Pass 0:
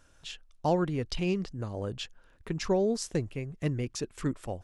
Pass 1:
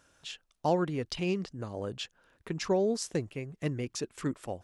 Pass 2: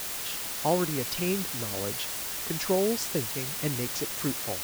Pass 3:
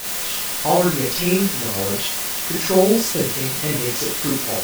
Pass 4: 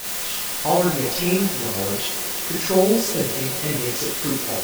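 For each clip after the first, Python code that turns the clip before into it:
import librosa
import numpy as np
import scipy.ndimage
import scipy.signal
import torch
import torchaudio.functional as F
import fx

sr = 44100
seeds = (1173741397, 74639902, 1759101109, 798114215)

y1 = fx.highpass(x, sr, hz=160.0, slope=6)
y2 = fx.quant_dither(y1, sr, seeds[0], bits=6, dither='triangular')
y2 = F.gain(torch.from_numpy(y2), 1.5).numpy()
y3 = fx.rev_schroeder(y2, sr, rt60_s=0.33, comb_ms=31, drr_db=-5.0)
y3 = F.gain(torch.from_numpy(y3), 3.5).numpy()
y4 = fx.echo_wet_bandpass(y3, sr, ms=188, feedback_pct=75, hz=520.0, wet_db=-14.0)
y4 = F.gain(torch.from_numpy(y4), -2.0).numpy()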